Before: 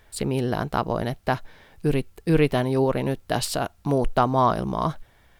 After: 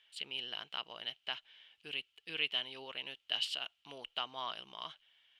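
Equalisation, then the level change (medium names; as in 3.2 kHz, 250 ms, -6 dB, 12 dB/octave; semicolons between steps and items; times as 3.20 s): band-pass filter 3 kHz, Q 9.5; +7.0 dB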